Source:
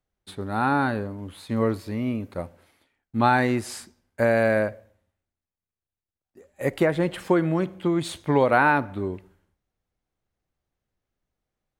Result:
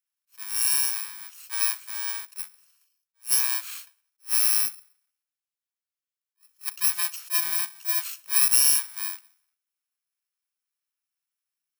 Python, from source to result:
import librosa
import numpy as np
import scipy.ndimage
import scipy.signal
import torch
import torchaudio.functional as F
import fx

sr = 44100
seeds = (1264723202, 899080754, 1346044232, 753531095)

y = fx.bit_reversed(x, sr, seeds[0], block=64)
y = scipy.signal.sosfilt(scipy.signal.butter(4, 1200.0, 'highpass', fs=sr, output='sos'), y)
y = fx.attack_slew(y, sr, db_per_s=360.0)